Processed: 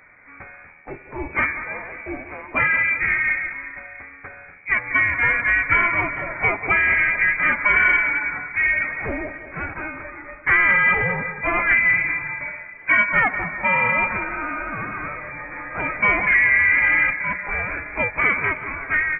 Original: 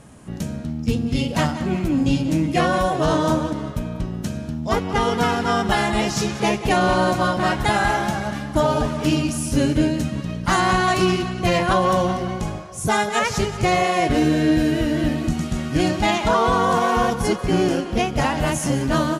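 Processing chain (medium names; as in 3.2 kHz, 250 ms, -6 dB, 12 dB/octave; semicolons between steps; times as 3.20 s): Chebyshev high-pass 780 Hz, order 5; in parallel at -5 dB: hard clipper -23 dBFS, distortion -9 dB; on the sum: frequency inversion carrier 3.1 kHz; trim +2.5 dB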